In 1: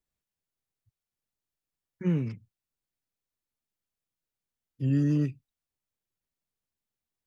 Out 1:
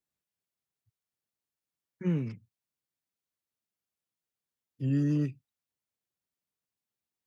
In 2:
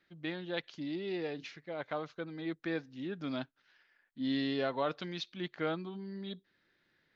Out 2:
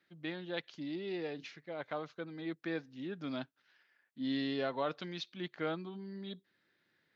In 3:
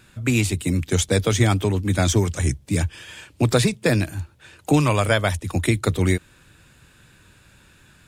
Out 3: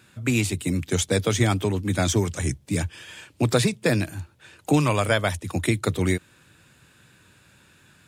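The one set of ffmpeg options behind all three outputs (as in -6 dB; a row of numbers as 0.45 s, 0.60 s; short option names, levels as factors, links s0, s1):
-af "highpass=94,volume=0.794"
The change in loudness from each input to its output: -2.5 LU, -2.0 LU, -2.5 LU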